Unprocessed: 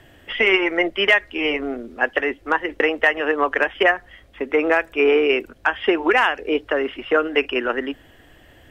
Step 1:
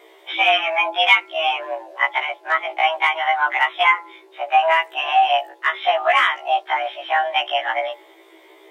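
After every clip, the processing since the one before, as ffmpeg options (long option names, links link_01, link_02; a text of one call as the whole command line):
ffmpeg -i in.wav -af "bandreject=frequency=175:width_type=h:width=4,bandreject=frequency=350:width_type=h:width=4,bandreject=frequency=525:width_type=h:width=4,bandreject=frequency=700:width_type=h:width=4,bandreject=frequency=875:width_type=h:width=4,bandreject=frequency=1050:width_type=h:width=4,afreqshift=320,afftfilt=real='re*1.73*eq(mod(b,3),0)':imag='im*1.73*eq(mod(b,3),0)':win_size=2048:overlap=0.75,volume=3dB" out.wav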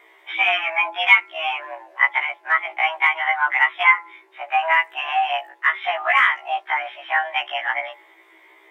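ffmpeg -i in.wav -af "equalizer=frequency=500:width_type=o:width=1:gain=-6,equalizer=frequency=1000:width_type=o:width=1:gain=5,equalizer=frequency=2000:width_type=o:width=1:gain=10,equalizer=frequency=4000:width_type=o:width=1:gain=-4,volume=-7dB" out.wav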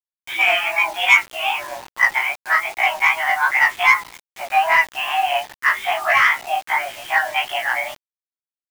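ffmpeg -i in.wav -af "acontrast=45,flanger=delay=18.5:depth=7.5:speed=2.5,acrusher=bits=5:mix=0:aa=0.000001" out.wav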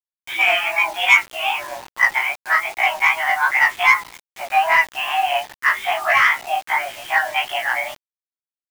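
ffmpeg -i in.wav -af anull out.wav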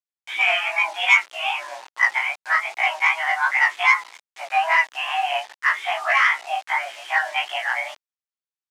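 ffmpeg -i in.wav -af "highpass=600,lowpass=7600,volume=-2.5dB" out.wav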